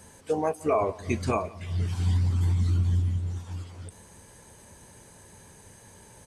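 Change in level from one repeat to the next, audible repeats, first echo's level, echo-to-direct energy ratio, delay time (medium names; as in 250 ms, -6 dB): -4.5 dB, 2, -22.0 dB, -20.5 dB, 175 ms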